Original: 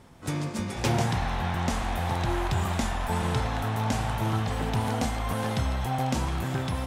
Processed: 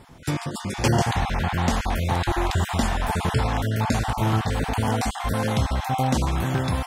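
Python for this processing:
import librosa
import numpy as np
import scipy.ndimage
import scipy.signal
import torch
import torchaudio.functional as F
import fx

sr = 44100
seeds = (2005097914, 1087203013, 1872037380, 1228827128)

y = fx.spec_dropout(x, sr, seeds[0], share_pct=20)
y = y * 10.0 ** (5.5 / 20.0)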